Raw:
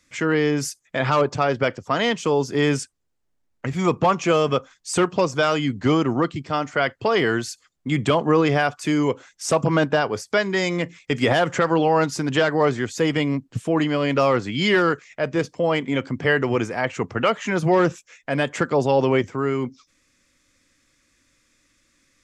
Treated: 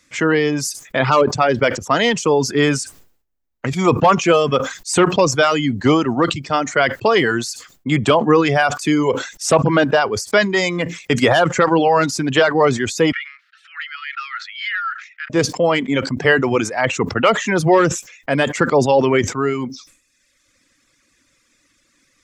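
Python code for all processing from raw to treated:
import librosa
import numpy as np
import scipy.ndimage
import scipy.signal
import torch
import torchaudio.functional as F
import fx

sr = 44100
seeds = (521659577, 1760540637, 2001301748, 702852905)

y = fx.chain(x, sr, fx.cheby_ripple_highpass(hz=1300.0, ripple_db=3),
    fx.air_absorb(metres=350.0),
    fx.band_squash(depth_pct=40), at=(13.12, 15.3))
y = fx.dereverb_blind(y, sr, rt60_s=1.0)
y = fx.low_shelf(y, sr, hz=94.0, db=-7.0)
y = fx.sustainer(y, sr, db_per_s=110.0)
y = F.gain(torch.from_numpy(y), 6.0).numpy()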